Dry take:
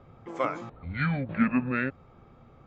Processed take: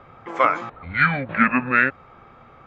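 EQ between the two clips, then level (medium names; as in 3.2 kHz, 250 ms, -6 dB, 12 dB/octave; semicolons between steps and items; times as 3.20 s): peaking EQ 1.6 kHz +14.5 dB 3 oct; 0.0 dB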